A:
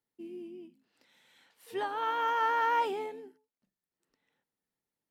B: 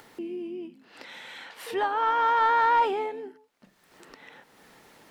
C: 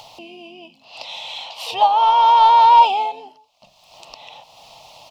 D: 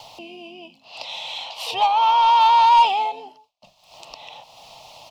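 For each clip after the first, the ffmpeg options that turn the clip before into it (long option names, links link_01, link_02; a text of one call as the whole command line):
ffmpeg -i in.wav -filter_complex "[0:a]asplit=2[link_01][link_02];[link_02]highpass=frequency=720:poles=1,volume=10dB,asoftclip=type=tanh:threshold=-17.5dB[link_03];[link_01][link_03]amix=inputs=2:normalize=0,lowpass=frequency=1800:poles=1,volume=-6dB,acompressor=mode=upward:threshold=-35dB:ratio=2.5,volume=5.5dB" out.wav
ffmpeg -i in.wav -af "firequalizer=gain_entry='entry(130,0);entry(190,-12);entry(400,-17);entry(640,9);entry(1100,1);entry(1600,-26);entry(2600,7);entry(4900,8);entry(8900,-5)':delay=0.05:min_phase=1,volume=8.5dB" out.wav
ffmpeg -i in.wav -filter_complex "[0:a]agate=range=-33dB:threshold=-49dB:ratio=3:detection=peak,acrossover=split=130|950[link_01][link_02][link_03];[link_02]asoftclip=type=tanh:threshold=-22dB[link_04];[link_01][link_04][link_03]amix=inputs=3:normalize=0" out.wav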